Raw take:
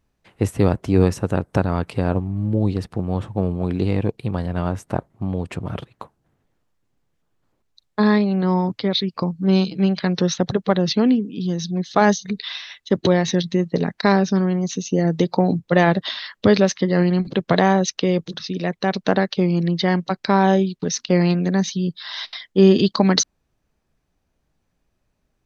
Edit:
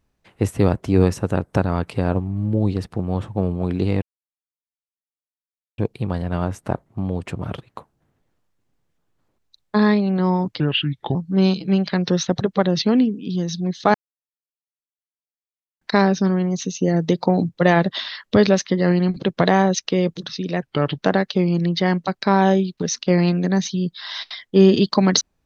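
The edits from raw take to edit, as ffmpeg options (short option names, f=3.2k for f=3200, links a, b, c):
-filter_complex "[0:a]asplit=8[a][b][c][d][e][f][g][h];[a]atrim=end=4.02,asetpts=PTS-STARTPTS,afade=t=out:st=4.016:d=0.004:c=hsin,apad=pad_dur=1.76[i];[b]atrim=start=4.02:end=8.844,asetpts=PTS-STARTPTS,afade=t=in:d=0.004:c=hsin[j];[c]atrim=start=8.84:end=9.26,asetpts=PTS-STARTPTS,asetrate=33516,aresample=44100,atrim=end_sample=24371,asetpts=PTS-STARTPTS[k];[d]atrim=start=9.256:end=12.05,asetpts=PTS-STARTPTS,afade=t=out:st=2.79:d=0.004:c=hsin[l];[e]atrim=start=12.05:end=13.92,asetpts=PTS-STARTPTS,volume=0[m];[f]atrim=start=13.92:end=18.734,asetpts=PTS-STARTPTS,afade=t=in:d=0.004:c=hsin[n];[g]atrim=start=18.73:end=19,asetpts=PTS-STARTPTS,asetrate=33516,aresample=44100,atrim=end_sample=15667,asetpts=PTS-STARTPTS[o];[h]atrim=start=18.996[p];[i][j]concat=n=2:v=0:a=1[q];[q][k]acrossfade=d=0.004:c1=hsin:c2=hsin[r];[l][m][n]concat=n=3:v=0:a=1[s];[r][s]acrossfade=d=0.004:c1=hsin:c2=hsin[t];[t][o]acrossfade=d=0.004:c1=hsin:c2=hsin[u];[u][p]acrossfade=d=0.004:c1=hsin:c2=hsin"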